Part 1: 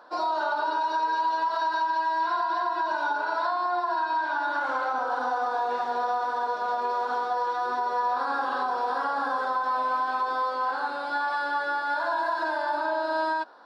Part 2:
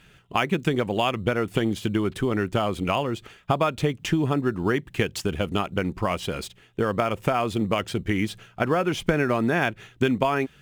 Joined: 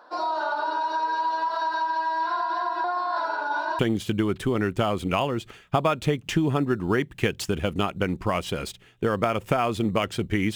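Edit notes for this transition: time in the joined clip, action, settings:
part 1
2.84–3.79 s: reverse
3.79 s: go over to part 2 from 1.55 s

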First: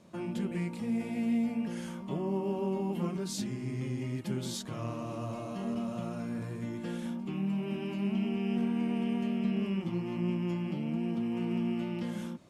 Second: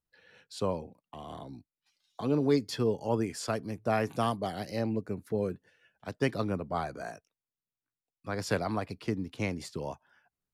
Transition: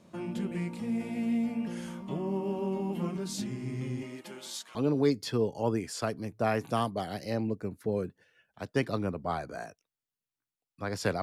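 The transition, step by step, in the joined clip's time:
first
4.01–4.75 s: high-pass 240 Hz -> 1.5 kHz
4.75 s: go over to second from 2.21 s

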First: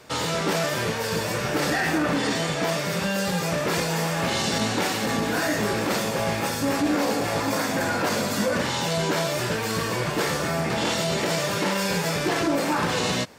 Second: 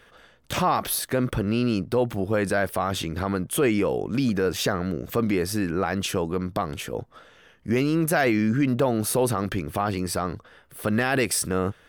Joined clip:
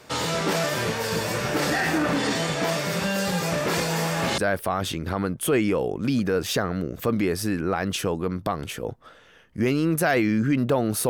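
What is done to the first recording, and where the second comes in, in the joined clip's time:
first
4.38 s: go over to second from 2.48 s

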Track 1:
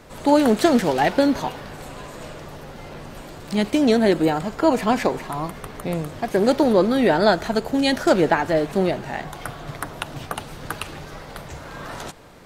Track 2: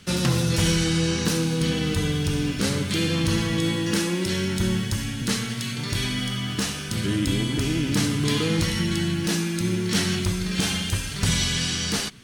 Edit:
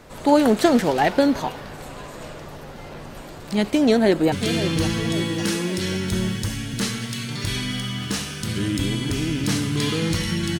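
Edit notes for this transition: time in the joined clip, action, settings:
track 1
3.86–4.32 s: echo throw 550 ms, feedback 55%, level -10.5 dB
4.32 s: go over to track 2 from 2.80 s

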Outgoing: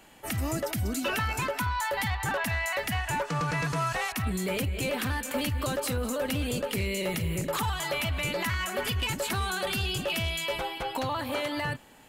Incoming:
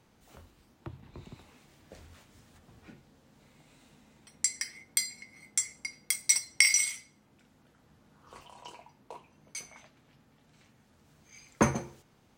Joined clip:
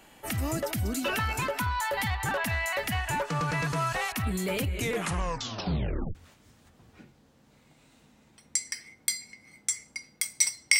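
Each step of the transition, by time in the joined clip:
outgoing
4.69 s: tape stop 1.46 s
6.15 s: go over to incoming from 2.04 s

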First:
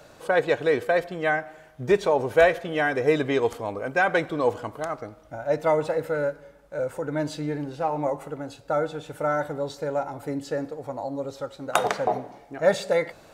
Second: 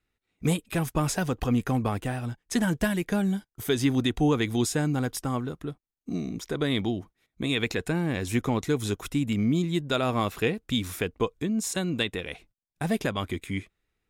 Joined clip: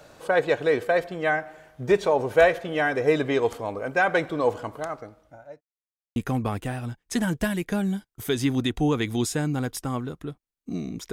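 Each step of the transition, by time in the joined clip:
first
4.73–5.61 s: fade out linear
5.61–6.16 s: mute
6.16 s: go over to second from 1.56 s

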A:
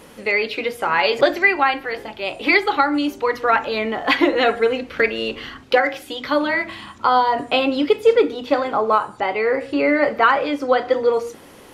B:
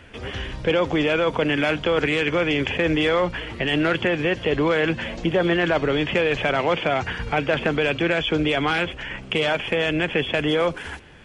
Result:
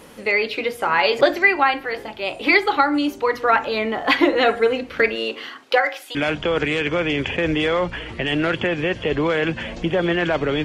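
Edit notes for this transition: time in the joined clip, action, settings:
A
5.15–6.15 s: high-pass 230 Hz -> 800 Hz
6.15 s: go over to B from 1.56 s

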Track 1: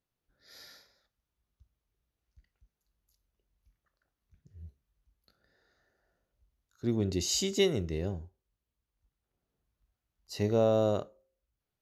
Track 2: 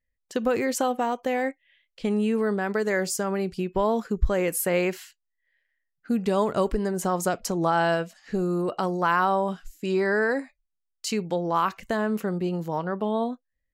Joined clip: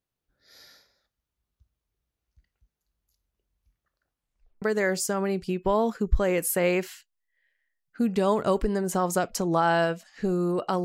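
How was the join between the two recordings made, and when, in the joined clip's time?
track 1
4.11 s: tape stop 0.51 s
4.62 s: go over to track 2 from 2.72 s

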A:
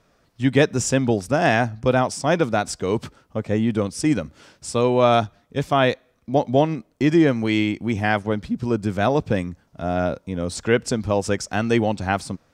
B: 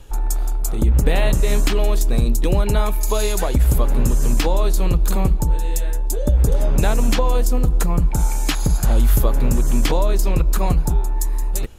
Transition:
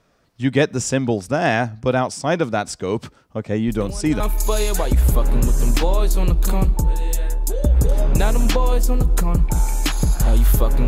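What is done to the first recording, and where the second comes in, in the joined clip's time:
A
3.68 s: add B from 2.31 s 0.52 s -13 dB
4.20 s: go over to B from 2.83 s

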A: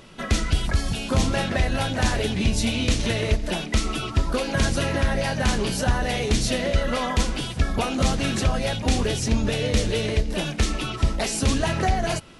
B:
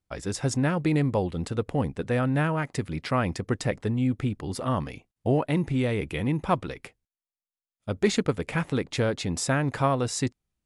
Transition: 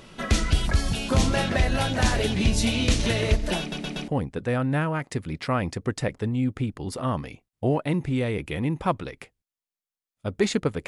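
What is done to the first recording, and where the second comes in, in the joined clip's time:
A
3.60 s: stutter in place 0.12 s, 4 plays
4.08 s: go over to B from 1.71 s

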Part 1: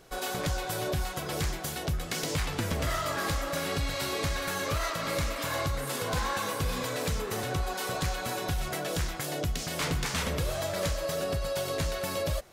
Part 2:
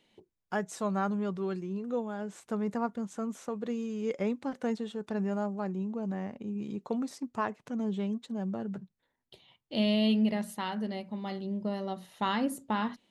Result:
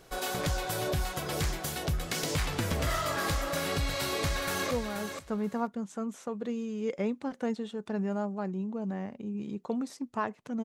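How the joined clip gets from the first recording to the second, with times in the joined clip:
part 1
4.02–4.71 s: echo throw 480 ms, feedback 15%, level -7.5 dB
4.71 s: go over to part 2 from 1.92 s

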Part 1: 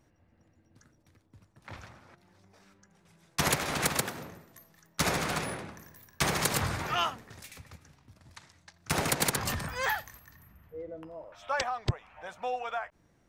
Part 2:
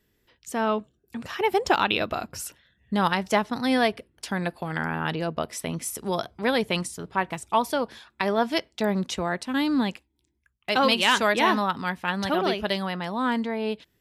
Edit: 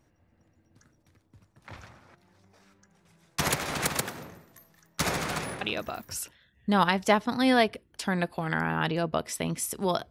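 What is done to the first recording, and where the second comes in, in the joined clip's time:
part 1
5.61 s: add part 2 from 1.85 s 0.50 s -6.5 dB
6.11 s: go over to part 2 from 2.35 s

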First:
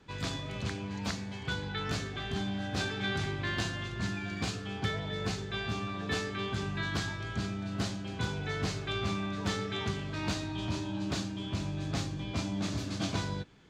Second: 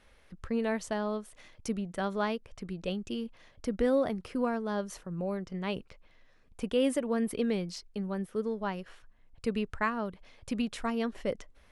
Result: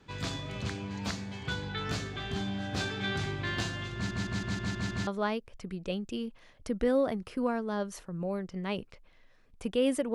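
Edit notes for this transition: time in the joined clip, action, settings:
first
3.95 s: stutter in place 0.16 s, 7 plays
5.07 s: go over to second from 2.05 s

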